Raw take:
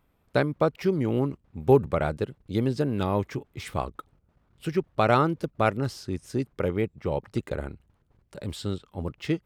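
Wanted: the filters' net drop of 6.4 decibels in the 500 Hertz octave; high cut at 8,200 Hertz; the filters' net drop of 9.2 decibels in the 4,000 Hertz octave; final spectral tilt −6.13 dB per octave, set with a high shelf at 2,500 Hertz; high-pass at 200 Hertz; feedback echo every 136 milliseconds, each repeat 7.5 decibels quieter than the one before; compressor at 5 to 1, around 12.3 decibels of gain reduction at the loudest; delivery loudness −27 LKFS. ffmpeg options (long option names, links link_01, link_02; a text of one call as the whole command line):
ffmpeg -i in.wav -af "highpass=200,lowpass=8200,equalizer=frequency=500:width_type=o:gain=-8,highshelf=frequency=2500:gain=-4.5,equalizer=frequency=4000:width_type=o:gain=-7.5,acompressor=threshold=-32dB:ratio=5,aecho=1:1:136|272|408|544|680:0.422|0.177|0.0744|0.0312|0.0131,volume=11.5dB" out.wav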